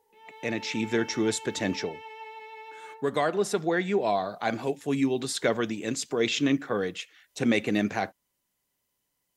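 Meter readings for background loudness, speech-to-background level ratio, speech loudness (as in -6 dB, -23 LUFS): -43.5 LUFS, 15.5 dB, -28.0 LUFS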